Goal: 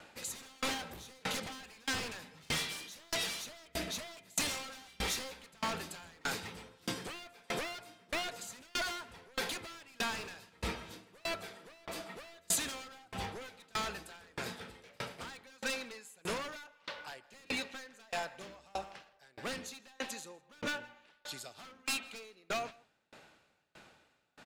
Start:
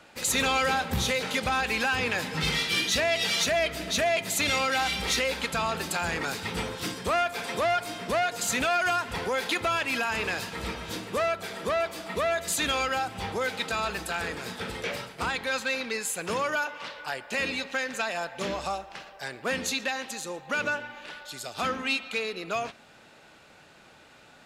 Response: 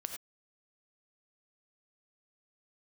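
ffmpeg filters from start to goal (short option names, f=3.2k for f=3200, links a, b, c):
-filter_complex "[0:a]acrossover=split=5800[a][b];[a]aeval=exprs='0.0447*(abs(mod(val(0)/0.0447+3,4)-2)-1)':c=same[c];[c][b]amix=inputs=2:normalize=0,asplit=2[d][e];[e]adelay=163.3,volume=-16dB,highshelf=f=4k:g=-3.67[f];[d][f]amix=inputs=2:normalize=0,aeval=exprs='val(0)*pow(10,-31*if(lt(mod(1.6*n/s,1),2*abs(1.6)/1000),1-mod(1.6*n/s,1)/(2*abs(1.6)/1000),(mod(1.6*n/s,1)-2*abs(1.6)/1000)/(1-2*abs(1.6)/1000))/20)':c=same"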